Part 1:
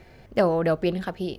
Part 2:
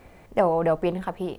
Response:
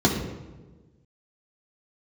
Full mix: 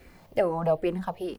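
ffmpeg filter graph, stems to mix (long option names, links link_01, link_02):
-filter_complex "[0:a]aemphasis=mode=production:type=75kf,volume=-10dB[link_01];[1:a]asplit=2[link_02][link_03];[link_03]afreqshift=-2.4[link_04];[link_02][link_04]amix=inputs=2:normalize=1,volume=-1,adelay=2.8,volume=-1dB,asplit=2[link_05][link_06];[link_06]apad=whole_len=61205[link_07];[link_01][link_07]sidechaincompress=threshold=-33dB:ratio=8:attack=16:release=722[link_08];[link_08][link_05]amix=inputs=2:normalize=0"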